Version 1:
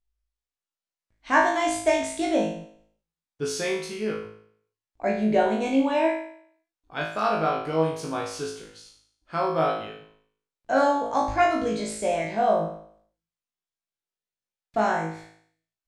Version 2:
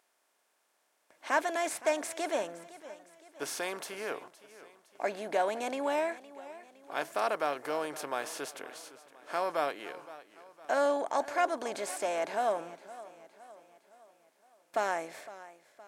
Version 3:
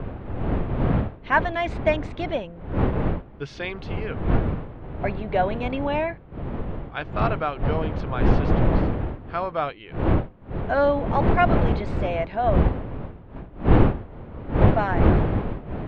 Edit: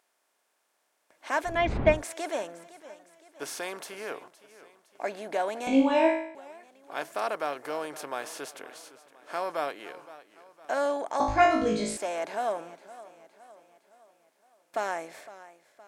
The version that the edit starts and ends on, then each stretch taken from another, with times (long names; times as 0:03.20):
2
0:01.52–0:01.96: punch in from 3, crossfade 0.16 s
0:05.67–0:06.35: punch in from 1
0:11.20–0:11.97: punch in from 1